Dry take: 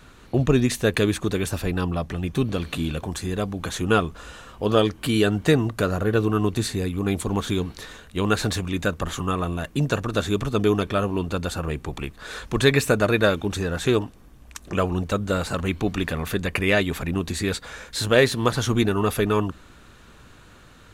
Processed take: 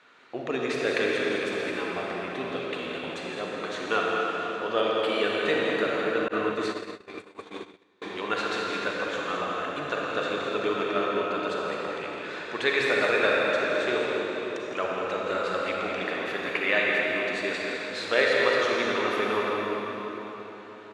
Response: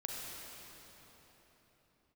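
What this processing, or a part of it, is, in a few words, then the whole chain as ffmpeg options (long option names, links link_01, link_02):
station announcement: -filter_complex "[0:a]highpass=470,lowpass=4000,equalizer=frequency=2100:width_type=o:width=0.42:gain=5,aecho=1:1:163.3|207:0.282|0.398[link_01];[1:a]atrim=start_sample=2205[link_02];[link_01][link_02]afir=irnorm=-1:irlink=0,asettb=1/sr,asplit=3[link_03][link_04][link_05];[link_03]atrim=end=6.284[link_06];[link_04]atrim=start=6.28:end=8.02,asetpts=PTS-STARTPTS,afade=type=in:duration=0.004:curve=qsin,afade=type=out:start_time=1.736:duration=0.004:curve=qsin,agate=range=-31dB:threshold=-26dB:ratio=16:detection=peak[link_07];[link_05]atrim=start=8.016[link_08];[link_06][link_07]acrossfade=duration=0.004:curve1=hsin:curve2=qsin[link_09];[link_09][link_08]acrossfade=duration=0.004:curve1=qsin:curve2=hsin,volume=-2dB"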